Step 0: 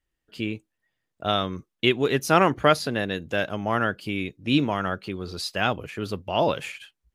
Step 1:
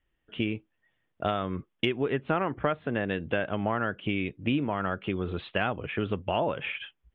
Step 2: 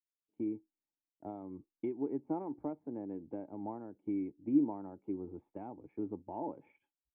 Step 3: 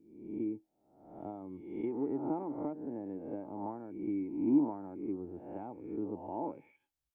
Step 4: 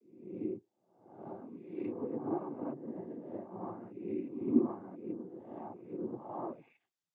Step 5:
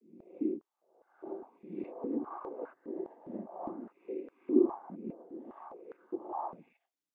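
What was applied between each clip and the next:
steep low-pass 3500 Hz 96 dB/oct; treble ducked by the level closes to 2300 Hz, closed at -21 dBFS; compressor 6:1, threshold -29 dBFS, peak gain reduction 15.5 dB; gain +4.5 dB
vocal tract filter u; low shelf 380 Hz -12 dB; three-band expander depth 70%; gain +5.5 dB
spectral swells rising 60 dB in 0.80 s
noise vocoder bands 16; gain -1.5 dB
stepped high-pass 4.9 Hz 200–1500 Hz; gain -3.5 dB

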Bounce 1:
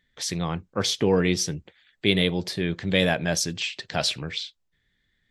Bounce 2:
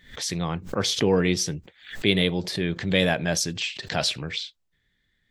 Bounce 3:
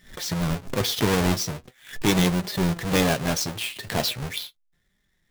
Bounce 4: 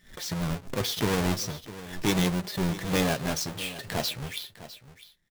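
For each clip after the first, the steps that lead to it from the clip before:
backwards sustainer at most 130 dB/s
half-waves squared off; flange 0.4 Hz, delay 4.8 ms, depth 4.9 ms, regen +52%
echo 0.654 s -15.5 dB; gain -4.5 dB

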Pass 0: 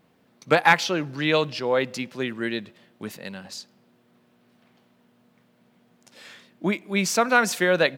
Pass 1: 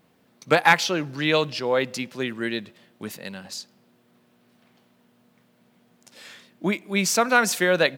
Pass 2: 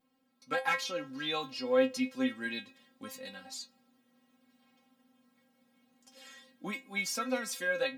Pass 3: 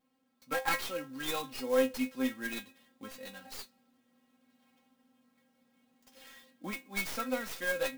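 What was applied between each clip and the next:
high shelf 5100 Hz +5 dB
vocal rider within 3 dB 0.5 s; metallic resonator 260 Hz, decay 0.21 s, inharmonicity 0.002; gain +2 dB
tracing distortion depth 0.14 ms; clock jitter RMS 0.028 ms; gain -1 dB

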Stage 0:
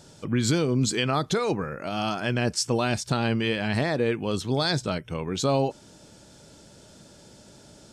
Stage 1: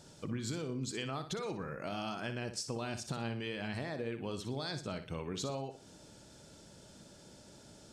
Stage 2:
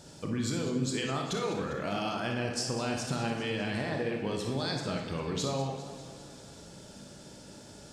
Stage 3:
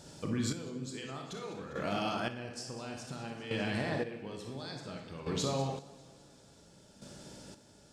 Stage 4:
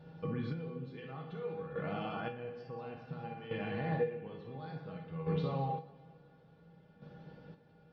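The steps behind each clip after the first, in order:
compressor, threshold -30 dBFS, peak gain reduction 11 dB; on a send: flutter echo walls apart 10.3 m, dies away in 0.37 s; on the sum: gain -6 dB
on a send at -2.5 dB: reverb RT60 0.95 s, pre-delay 23 ms; on the sum: warbling echo 0.2 s, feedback 62%, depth 116 cents, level -13 dB; gain +4.5 dB
chopper 0.57 Hz, depth 65%, duty 30%; gain -1 dB
Gaussian blur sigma 3.2 samples; resonator 160 Hz, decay 0.16 s, harmonics odd, mix 90%; gain +9 dB

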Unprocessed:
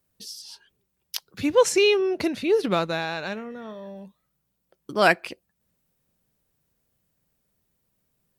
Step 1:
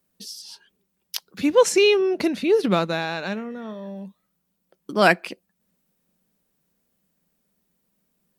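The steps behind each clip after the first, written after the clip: resonant low shelf 150 Hz -6 dB, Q 3; gain +1.5 dB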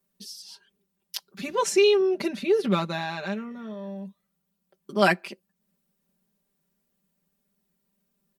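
comb 5.1 ms, depth 97%; gain -7 dB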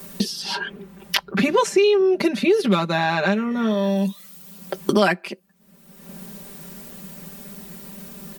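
three-band squash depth 100%; gain +7 dB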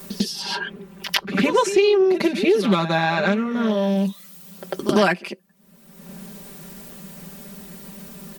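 reverse echo 98 ms -11 dB; Doppler distortion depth 0.14 ms

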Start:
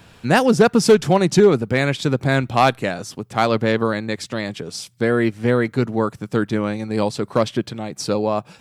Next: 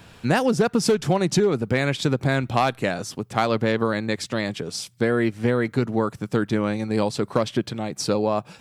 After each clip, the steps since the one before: compressor 6:1, threshold -16 dBFS, peak gain reduction 8.5 dB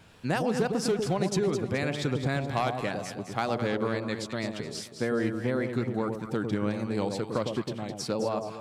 wow and flutter 77 cents; echo with dull and thin repeats by turns 0.106 s, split 890 Hz, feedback 63%, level -4.5 dB; gain -8 dB

